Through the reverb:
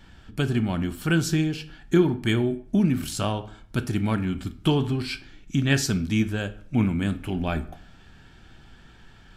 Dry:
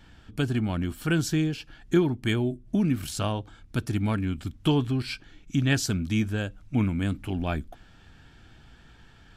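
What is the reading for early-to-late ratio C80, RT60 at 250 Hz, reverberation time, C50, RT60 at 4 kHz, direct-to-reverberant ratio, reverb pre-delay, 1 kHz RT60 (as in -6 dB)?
19.0 dB, 0.60 s, 0.55 s, 15.5 dB, 0.45 s, 9.0 dB, 5 ms, 0.55 s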